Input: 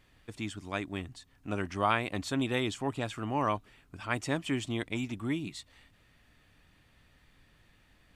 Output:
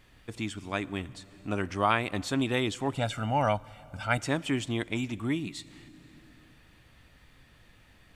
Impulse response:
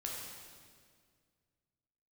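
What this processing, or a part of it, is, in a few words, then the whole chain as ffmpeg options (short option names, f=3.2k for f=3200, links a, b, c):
compressed reverb return: -filter_complex "[0:a]asettb=1/sr,asplit=3[a][b][c];[a]atrim=end=2.934[d];[b]atrim=start=2.93:end=4.18,asetpts=PTS-STARTPTS,afade=t=in:d=0.004:c=qsin,afade=t=out:st=1.246:d=0.004:c=qsin,aecho=1:1:1.4:0.84,atrim=end_sample=55125[e];[c]atrim=start=4.176[f];[d][e]acrossfade=d=0.004:c1=hsin:c2=qsin[g];[g][f]acrossfade=d=0.004:c1=qsin:c2=hsin,asplit=2[h][i];[1:a]atrim=start_sample=2205[j];[i][j]afir=irnorm=-1:irlink=0,acompressor=threshold=-47dB:ratio=4,volume=-4.5dB[k];[h][k]amix=inputs=2:normalize=0,volume=2dB"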